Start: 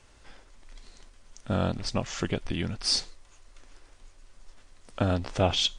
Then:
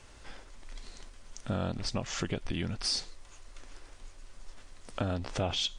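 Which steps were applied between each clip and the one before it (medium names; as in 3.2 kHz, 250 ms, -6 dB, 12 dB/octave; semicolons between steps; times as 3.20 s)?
in parallel at -1 dB: peak limiter -21 dBFS, peak gain reduction 10 dB; on the sum: compression 2:1, threshold -32 dBFS, peak gain reduction 9 dB; trim -2 dB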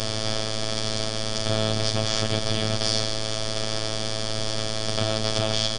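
spectral levelling over time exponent 0.2; comb 7.5 ms, depth 99%; robot voice 109 Hz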